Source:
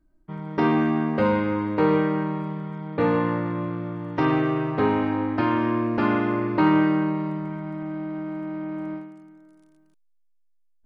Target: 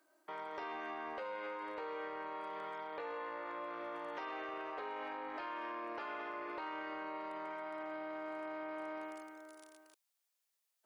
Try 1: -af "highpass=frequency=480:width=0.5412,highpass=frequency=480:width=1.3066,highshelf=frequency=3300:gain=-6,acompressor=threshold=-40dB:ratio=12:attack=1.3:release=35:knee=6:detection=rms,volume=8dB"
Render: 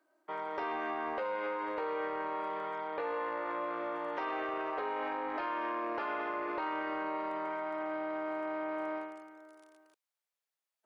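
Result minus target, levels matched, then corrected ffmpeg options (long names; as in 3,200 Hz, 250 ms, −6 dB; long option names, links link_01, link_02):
downward compressor: peak gain reduction −8.5 dB; 4,000 Hz band −4.0 dB
-af "highpass=frequency=480:width=0.5412,highpass=frequency=480:width=1.3066,highshelf=frequency=3300:gain=4.5,acompressor=threshold=-48dB:ratio=12:attack=1.3:release=35:knee=6:detection=rms,volume=8dB"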